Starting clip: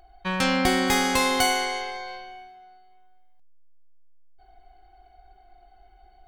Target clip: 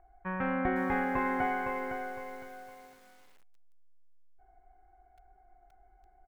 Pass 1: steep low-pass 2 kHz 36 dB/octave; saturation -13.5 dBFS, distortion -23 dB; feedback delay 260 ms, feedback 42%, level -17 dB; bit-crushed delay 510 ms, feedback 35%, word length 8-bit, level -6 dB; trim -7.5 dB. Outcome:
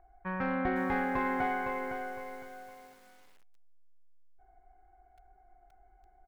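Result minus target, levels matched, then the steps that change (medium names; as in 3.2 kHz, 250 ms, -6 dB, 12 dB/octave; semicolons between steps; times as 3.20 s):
saturation: distortion +13 dB
change: saturation -6 dBFS, distortion -36 dB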